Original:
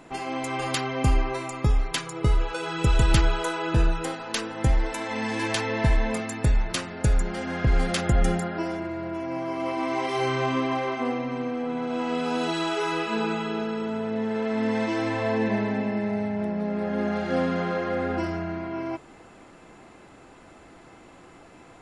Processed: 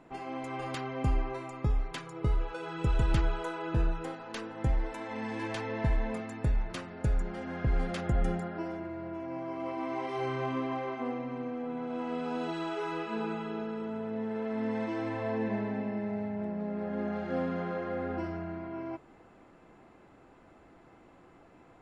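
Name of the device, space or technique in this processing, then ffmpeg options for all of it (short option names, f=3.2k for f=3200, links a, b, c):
through cloth: -af "highshelf=f=3.2k:g=-13,volume=-7dB"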